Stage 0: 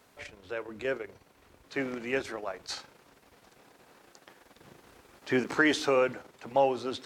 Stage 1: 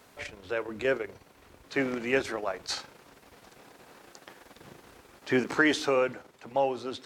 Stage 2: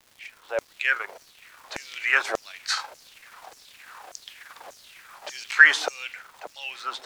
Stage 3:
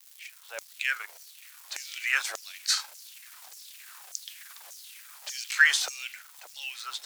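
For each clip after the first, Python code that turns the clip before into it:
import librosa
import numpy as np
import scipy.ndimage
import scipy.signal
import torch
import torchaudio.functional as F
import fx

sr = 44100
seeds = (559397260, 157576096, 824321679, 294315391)

y1 = fx.rider(x, sr, range_db=5, speed_s=2.0)
y2 = fx.fade_in_head(y1, sr, length_s=1.05)
y2 = fx.filter_lfo_highpass(y2, sr, shape='saw_down', hz=1.7, low_hz=580.0, high_hz=6600.0, q=3.4)
y2 = fx.dmg_crackle(y2, sr, seeds[0], per_s=600.0, level_db=-49.0)
y2 = F.gain(torch.from_numpy(y2), 5.0).numpy()
y3 = np.diff(y2, prepend=0.0)
y3 = F.gain(torch.from_numpy(y3), 6.0).numpy()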